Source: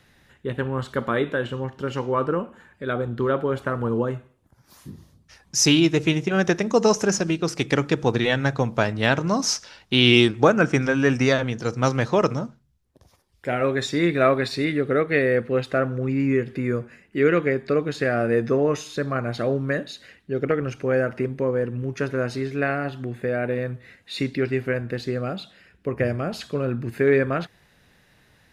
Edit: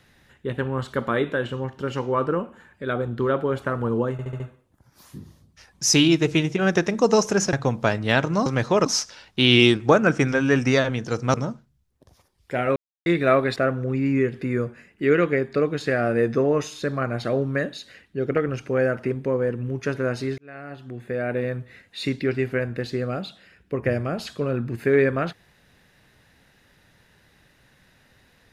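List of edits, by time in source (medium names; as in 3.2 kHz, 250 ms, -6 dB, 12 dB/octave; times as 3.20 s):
4.12 s: stutter 0.07 s, 5 plays
7.25–8.47 s: delete
11.88–12.28 s: move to 9.40 s
13.70–14.00 s: mute
14.50–15.70 s: delete
22.52–23.54 s: fade in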